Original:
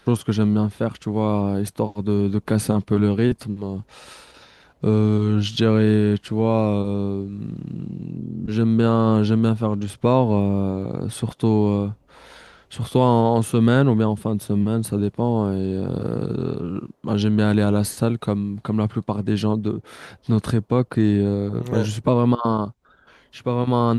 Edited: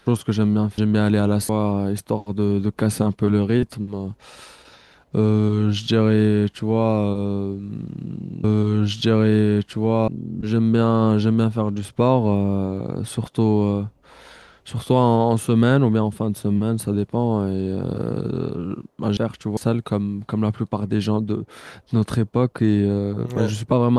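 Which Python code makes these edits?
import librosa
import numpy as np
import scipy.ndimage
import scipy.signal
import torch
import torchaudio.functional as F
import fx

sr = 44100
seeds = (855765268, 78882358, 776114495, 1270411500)

y = fx.edit(x, sr, fx.swap(start_s=0.78, length_s=0.4, other_s=17.22, other_length_s=0.71),
    fx.duplicate(start_s=4.99, length_s=1.64, to_s=8.13), tone=tone)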